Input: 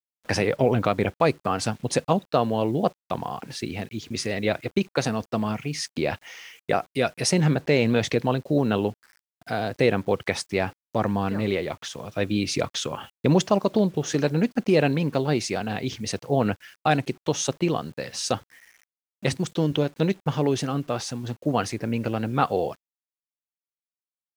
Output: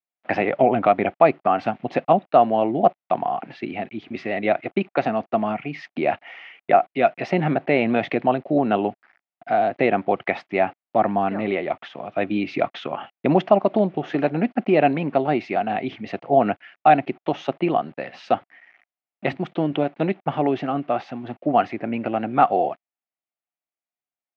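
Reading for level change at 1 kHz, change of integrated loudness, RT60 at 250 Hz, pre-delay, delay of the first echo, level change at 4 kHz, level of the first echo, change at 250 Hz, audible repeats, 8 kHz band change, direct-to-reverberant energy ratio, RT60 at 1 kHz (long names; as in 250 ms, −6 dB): +8.5 dB, +3.0 dB, no reverb audible, no reverb audible, no echo audible, −7.0 dB, no echo audible, +1.5 dB, no echo audible, below −25 dB, no reverb audible, no reverb audible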